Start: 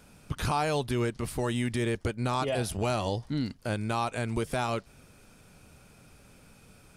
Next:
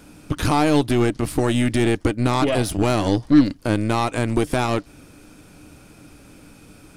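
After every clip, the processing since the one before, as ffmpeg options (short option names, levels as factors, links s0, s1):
-af "equalizer=f=300:w=5:g=14.5,aeval=exprs='0.266*(cos(1*acos(clip(val(0)/0.266,-1,1)))-cos(1*PI/2))+0.0168*(cos(8*acos(clip(val(0)/0.266,-1,1)))-cos(8*PI/2))':c=same,volume=2.37"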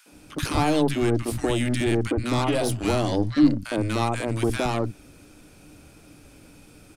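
-filter_complex "[0:a]acrossover=split=200|1200[s0][s1][s2];[s1]adelay=60[s3];[s0]adelay=120[s4];[s4][s3][s2]amix=inputs=3:normalize=0,volume=0.75"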